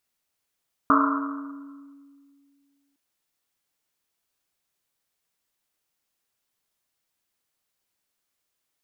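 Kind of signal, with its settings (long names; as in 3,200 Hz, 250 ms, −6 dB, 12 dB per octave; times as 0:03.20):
drum after Risset length 2.06 s, pitch 280 Hz, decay 2.40 s, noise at 1,200 Hz, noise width 410 Hz, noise 50%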